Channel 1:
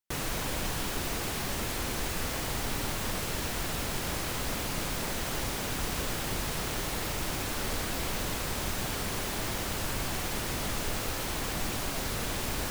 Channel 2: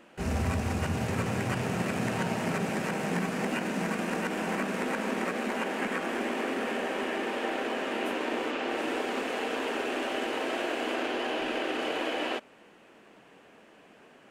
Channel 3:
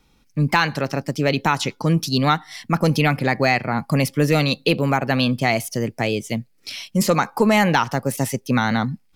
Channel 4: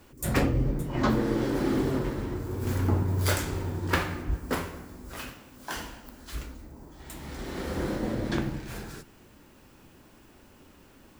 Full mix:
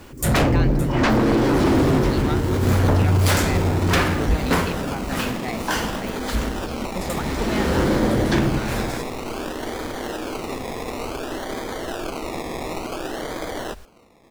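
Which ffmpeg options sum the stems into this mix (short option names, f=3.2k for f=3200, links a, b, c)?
-filter_complex "[0:a]asubboost=boost=5.5:cutoff=68,adelay=1150,volume=-16.5dB[a];[1:a]acrusher=samples=23:mix=1:aa=0.000001:lfo=1:lforange=13.8:lforate=0.56,adelay=1350,volume=2dB[b];[2:a]volume=-13.5dB[c];[3:a]aeval=exprs='0.282*sin(PI/2*3.55*val(0)/0.282)':c=same,volume=-2.5dB[d];[a][b][c][d]amix=inputs=4:normalize=0,highshelf=f=11k:g=-6"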